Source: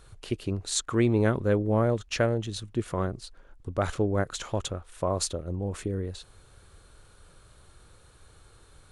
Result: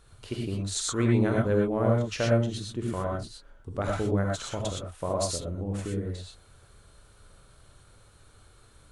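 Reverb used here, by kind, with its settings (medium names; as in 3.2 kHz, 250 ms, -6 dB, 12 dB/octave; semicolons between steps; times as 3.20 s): gated-style reverb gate 140 ms rising, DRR -1.5 dB; trim -4.5 dB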